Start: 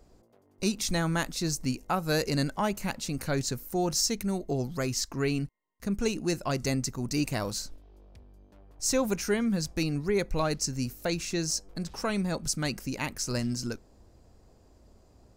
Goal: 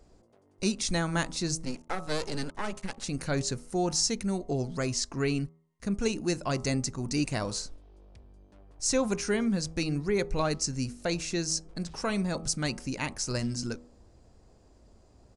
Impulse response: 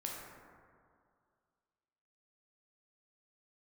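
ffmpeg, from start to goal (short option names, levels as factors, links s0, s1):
-filter_complex "[0:a]asettb=1/sr,asplit=3[s0][s1][s2];[s0]atrim=end=1.654[s3];[s1]atrim=start=1.65:end=3.04,asetpts=PTS-STARTPTS,afade=t=in:d=0.004:c=qsin,afade=t=out:st=1.386:d=0.004:c=qsin,aeval=exprs='max(val(0),0)':c=same[s4];[s2]atrim=start=3.036[s5];[s3][s4]acrossfade=d=0.004:c1=hsin:c2=qsin[s6];[s6][s5]acrossfade=d=0.004:c1=qsin:c2=hsin,bandreject=f=80.65:t=h:w=4,bandreject=f=161.3:t=h:w=4,bandreject=f=241.95:t=h:w=4,bandreject=f=322.6:t=h:w=4,bandreject=f=403.25:t=h:w=4,bandreject=f=483.9:t=h:w=4,bandreject=f=564.55:t=h:w=4,bandreject=f=645.2:t=h:w=4,bandreject=f=725.85:t=h:w=4,bandreject=f=806.5:t=h:w=4,bandreject=f=887.15:t=h:w=4,bandreject=f=967.8:t=h:w=4,bandreject=f=1048.45:t=h:w=4,bandreject=f=1129.1:t=h:w=4,bandreject=f=1209.75:t=h:w=4,bandreject=f=1290.4:t=h:w=4,aresample=22050,aresample=44100"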